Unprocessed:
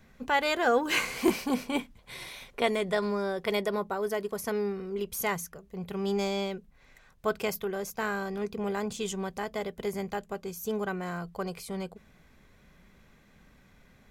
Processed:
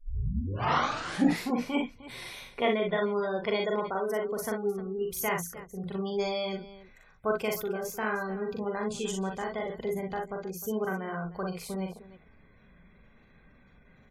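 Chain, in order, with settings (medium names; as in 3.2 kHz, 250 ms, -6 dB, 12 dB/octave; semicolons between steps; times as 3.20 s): tape start-up on the opening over 1.57 s; spectral gate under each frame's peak -25 dB strong; on a send: multi-tap echo 42/59/306 ms -3.5/-7/-16 dB; on the sum: trim -1.5 dB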